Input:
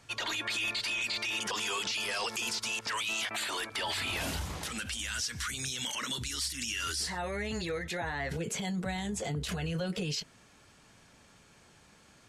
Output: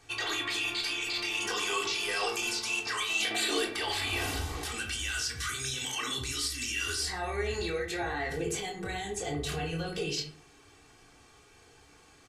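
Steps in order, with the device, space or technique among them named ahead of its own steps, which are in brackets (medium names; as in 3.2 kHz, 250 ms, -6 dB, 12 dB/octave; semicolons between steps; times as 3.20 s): 3.20–3.71 s: graphic EQ 250/500/1000/4000/8000 Hz +9/+9/-6/+4/+3 dB; microphone above a desk (comb 2.6 ms, depth 74%; reverberation RT60 0.50 s, pre-delay 15 ms, DRR 1 dB); trim -2 dB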